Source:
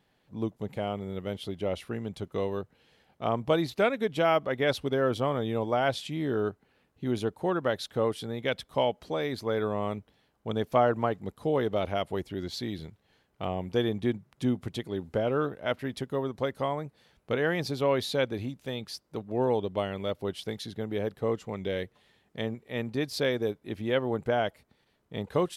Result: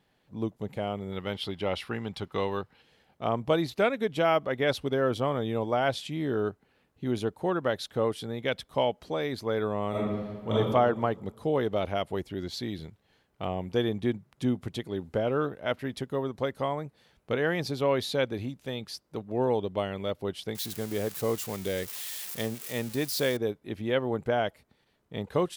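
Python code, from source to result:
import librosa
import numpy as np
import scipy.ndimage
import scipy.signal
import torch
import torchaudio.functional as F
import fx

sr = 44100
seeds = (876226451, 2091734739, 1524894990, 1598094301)

y = fx.spec_box(x, sr, start_s=1.12, length_s=1.7, low_hz=740.0, high_hz=5600.0, gain_db=7)
y = fx.reverb_throw(y, sr, start_s=9.9, length_s=0.62, rt60_s=1.5, drr_db=-9.5)
y = fx.crossing_spikes(y, sr, level_db=-28.0, at=(20.55, 23.37))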